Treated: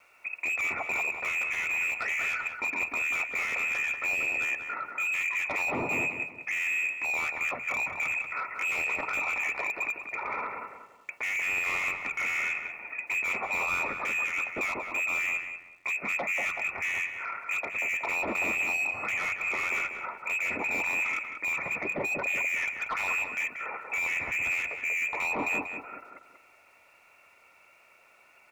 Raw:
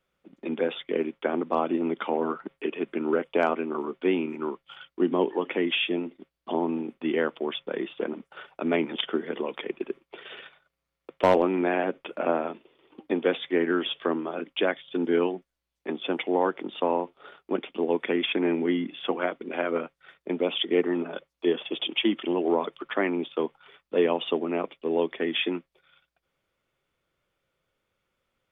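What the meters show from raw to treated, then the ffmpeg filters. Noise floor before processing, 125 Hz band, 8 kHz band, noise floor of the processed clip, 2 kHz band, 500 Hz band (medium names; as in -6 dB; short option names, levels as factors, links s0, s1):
-84 dBFS, -8.0 dB, no reading, -60 dBFS, +9.5 dB, -15.5 dB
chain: -filter_complex "[0:a]lowpass=f=2400:t=q:w=0.5098,lowpass=f=2400:t=q:w=0.6013,lowpass=f=2400:t=q:w=0.9,lowpass=f=2400:t=q:w=2.563,afreqshift=-2800,asplit=2[s0][s1];[s1]highpass=f=720:p=1,volume=31.6,asoftclip=type=tanh:threshold=0.422[s2];[s0][s2]amix=inputs=2:normalize=0,lowpass=f=1800:p=1,volume=0.501,asplit=2[s3][s4];[s4]acompressor=threshold=0.0224:ratio=6,volume=1.33[s5];[s3][s5]amix=inputs=2:normalize=0,bandreject=f=60:t=h:w=6,bandreject=f=120:t=h:w=6,bandreject=f=180:t=h:w=6,alimiter=limit=0.133:level=0:latency=1,aeval=exprs='val(0)*gte(abs(val(0)),0.00158)':c=same,asuperstop=centerf=1600:order=4:qfactor=6.2,equalizer=f=86:w=4.5:g=6,asplit=2[s6][s7];[s7]adelay=187,lowpass=f=1600:p=1,volume=0.668,asplit=2[s8][s9];[s9]adelay=187,lowpass=f=1600:p=1,volume=0.39,asplit=2[s10][s11];[s11]adelay=187,lowpass=f=1600:p=1,volume=0.39,asplit=2[s12][s13];[s13]adelay=187,lowpass=f=1600:p=1,volume=0.39,asplit=2[s14][s15];[s15]adelay=187,lowpass=f=1600:p=1,volume=0.39[s16];[s8][s10][s12][s14][s16]amix=inputs=5:normalize=0[s17];[s6][s17]amix=inputs=2:normalize=0,volume=0.422"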